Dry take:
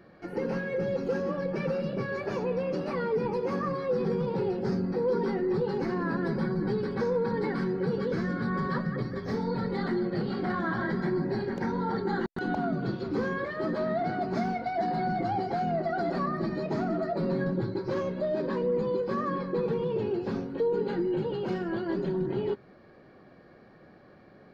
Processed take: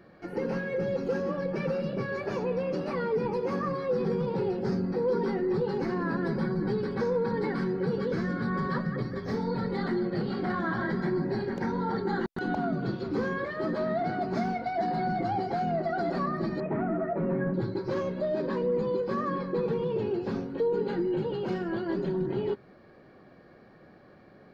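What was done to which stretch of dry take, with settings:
16.6–17.54 steep low-pass 2500 Hz

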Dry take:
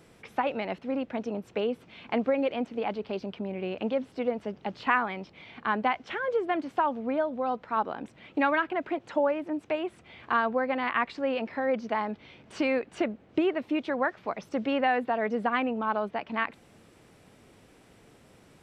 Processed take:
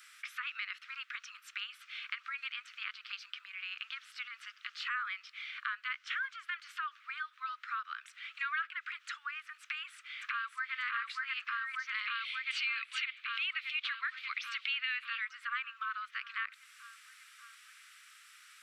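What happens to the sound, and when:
9.62–10.74 echo throw 0.59 s, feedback 70%, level -0.5 dB
11.94–15.25 band shelf 3100 Hz +11.5 dB 1.3 oct
whole clip: limiter -19.5 dBFS; steep high-pass 1200 Hz 96 dB/oct; compressor 2:1, threshold -46 dBFS; gain +6.5 dB

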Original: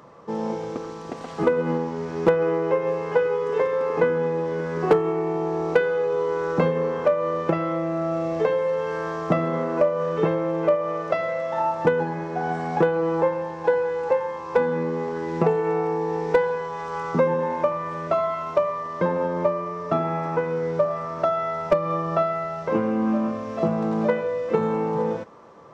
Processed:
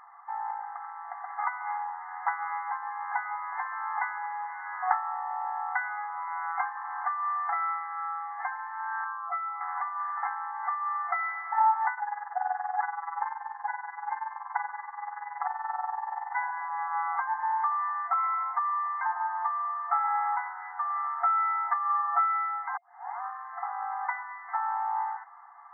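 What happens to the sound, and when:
9.04–9.61 spectral contrast raised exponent 1.8
11.94–16.38 AM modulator 21 Hz, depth 60%
22.77 tape start 0.44 s
whole clip: comb 2.4 ms, depth 37%; FFT band-pass 690–2100 Hz

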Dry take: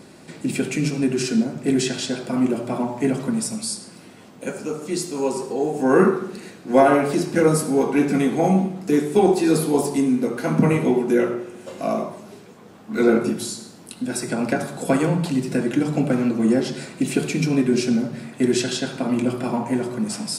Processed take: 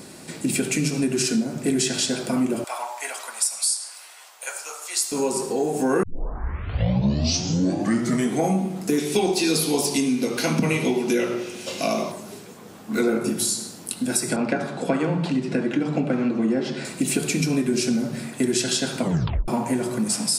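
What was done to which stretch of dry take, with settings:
2.64–5.12 HPF 770 Hz 24 dB/oct
6.03 tape start 2.41 s
8.98–12.12 band shelf 3700 Hz +9.5 dB
14.36–16.85 BPF 130–3300 Hz
18.99 tape stop 0.49 s
whole clip: high shelf 5300 Hz +11 dB; compressor 3:1, threshold -22 dBFS; gain +2 dB

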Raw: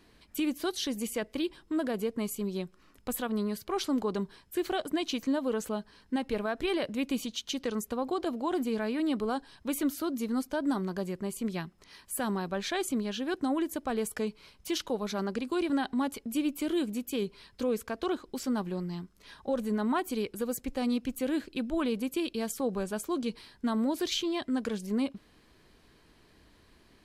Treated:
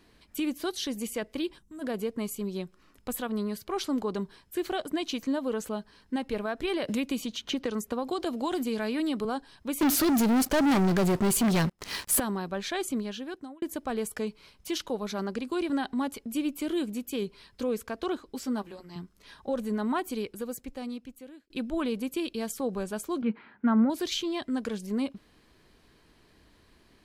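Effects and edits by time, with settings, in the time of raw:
1.59–1.82 spectral gain 240–5600 Hz -14 dB
6.88–9.25 three-band squash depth 100%
9.81–12.2 sample leveller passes 5
12.99–13.62 fade out
18.2–18.96 notch comb 180 Hz
20.05–21.5 fade out
23.22–23.9 speaker cabinet 160–2400 Hz, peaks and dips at 220 Hz +9 dB, 820 Hz +5 dB, 1400 Hz +10 dB, 2200 Hz +4 dB

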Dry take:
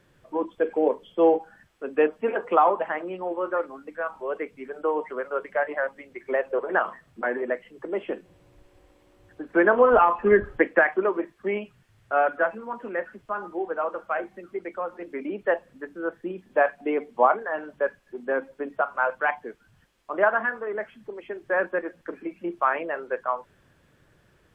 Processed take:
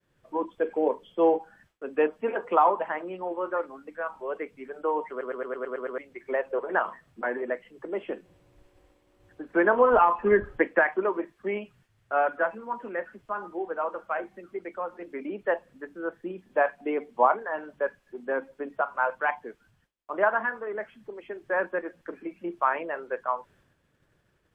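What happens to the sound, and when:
5.1 stutter in place 0.11 s, 8 plays
whole clip: expander -55 dBFS; dynamic EQ 950 Hz, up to +6 dB, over -42 dBFS, Q 6.8; gain -3 dB

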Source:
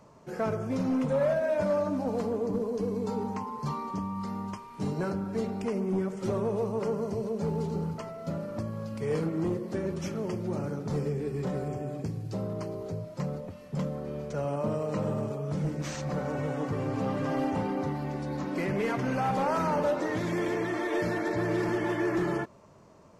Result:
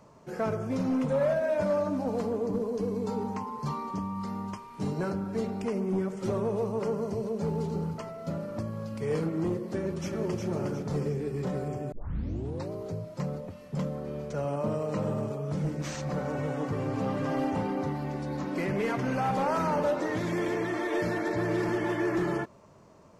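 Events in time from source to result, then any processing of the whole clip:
9.76–10.46 echo throw 0.36 s, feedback 40%, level -4 dB
11.92 tape start 0.80 s

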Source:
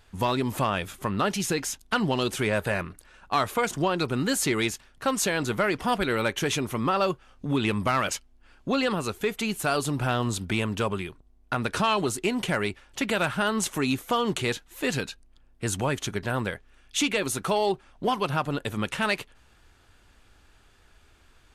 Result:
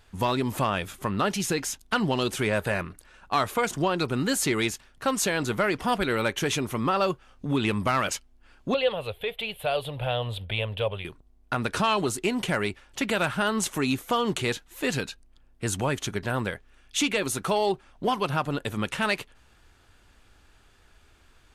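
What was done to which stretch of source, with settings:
8.74–11.05 EQ curve 110 Hz 0 dB, 200 Hz -14 dB, 340 Hz -17 dB, 520 Hz +6 dB, 1300 Hz -11 dB, 3400 Hz +5 dB, 6200 Hz -29 dB, 11000 Hz -8 dB

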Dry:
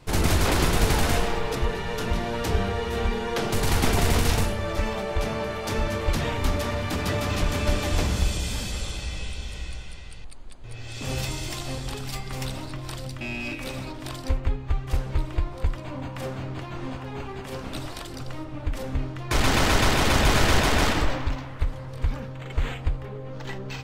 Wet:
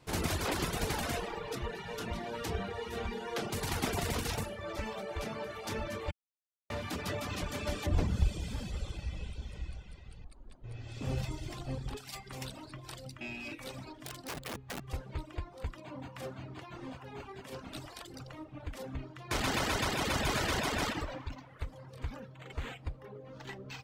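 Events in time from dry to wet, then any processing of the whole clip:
6.11–6.7 mute
7.86–11.97 tilt -2.5 dB/oct
13.96–14.81 wrapped overs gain 25.5 dB
whole clip: reverb removal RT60 0.98 s; HPF 100 Hz 6 dB/oct; gain -7.5 dB

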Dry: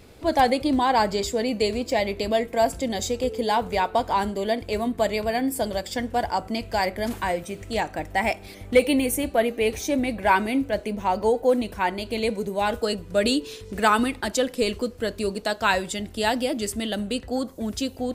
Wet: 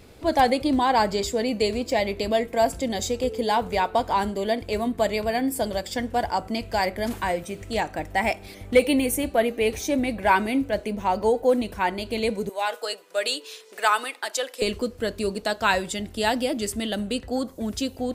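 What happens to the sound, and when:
12.49–14.62 Bessel high-pass 680 Hz, order 4

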